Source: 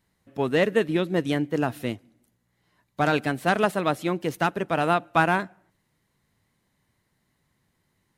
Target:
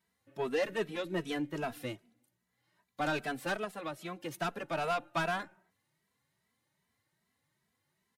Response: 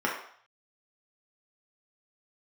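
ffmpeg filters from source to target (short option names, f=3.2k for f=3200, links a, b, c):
-filter_complex "[0:a]highpass=110,equalizer=f=230:w=0.48:g=-4.5,asplit=3[a][b][c];[a]afade=t=out:st=3.55:d=0.02[d];[b]acompressor=threshold=-30dB:ratio=4,afade=t=in:st=3.55:d=0.02,afade=t=out:st=4.31:d=0.02[e];[c]afade=t=in:st=4.31:d=0.02[f];[d][e][f]amix=inputs=3:normalize=0,asoftclip=type=tanh:threshold=-19.5dB,asplit=2[g][h];[h]adelay=2.7,afreqshift=2.5[i];[g][i]amix=inputs=2:normalize=1,volume=-2.5dB"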